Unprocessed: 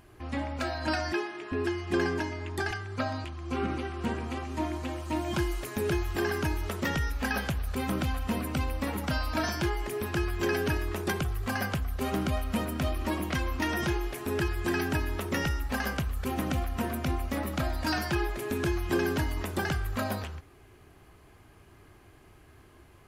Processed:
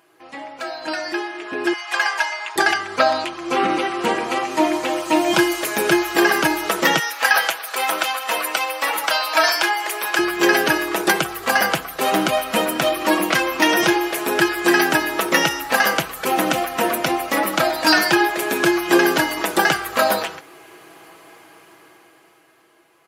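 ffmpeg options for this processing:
ffmpeg -i in.wav -filter_complex "[0:a]asettb=1/sr,asplit=3[link_01][link_02][link_03];[link_01]atrim=end=1.734[link_04];[link_02]atrim=start=1.73:end=2.56,asetpts=PTS-STARTPTS,afade=type=in:duration=0.004:curve=qsin,afade=type=out:start_time=0.826:duration=0.004:curve=qsin,highpass=frequency=750:width=0.5412,highpass=frequency=750:width=1.3066[link_05];[link_03]atrim=start=2.556[link_06];[link_04][link_05]acrossfade=duration=0.004:curve1=hsin:curve2=qsin[link_07];[link_07][link_06]acrossfade=duration=0.004:curve1=qsin:curve2=hsin,asettb=1/sr,asplit=3[link_08][link_09][link_10];[link_08]atrim=end=6.994[link_11];[link_09]atrim=start=6.99:end=10.19,asetpts=PTS-STARTPTS,afade=type=in:duration=0.004:curve=qsin,afade=type=out:start_time=3.196:duration=0.004:curve=qsin,highpass=680[link_12];[link_10]atrim=start=10.186[link_13];[link_11][link_12]acrossfade=duration=0.004:curve1=hsin:curve2=qsin[link_14];[link_14][link_13]acrossfade=duration=0.004:curve1=qsin:curve2=hsin,highpass=400,aecho=1:1:6.1:0.54,dynaudnorm=framelen=190:gausssize=17:maxgain=15dB,volume=1.5dB" out.wav

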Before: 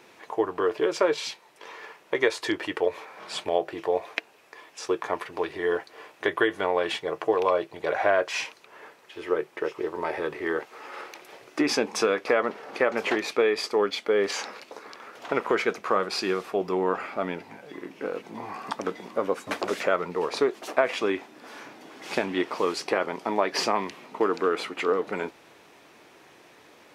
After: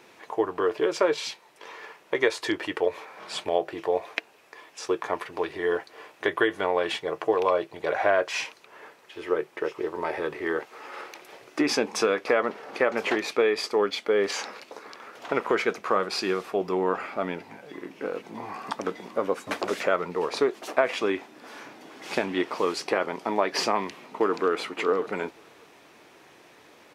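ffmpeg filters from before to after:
ffmpeg -i in.wav -filter_complex "[0:a]asplit=2[link_01][link_02];[link_02]afade=type=in:start_time=23.72:duration=0.01,afade=type=out:start_time=24.48:duration=0.01,aecho=0:1:580|1160:0.158489|0.0237734[link_03];[link_01][link_03]amix=inputs=2:normalize=0" out.wav

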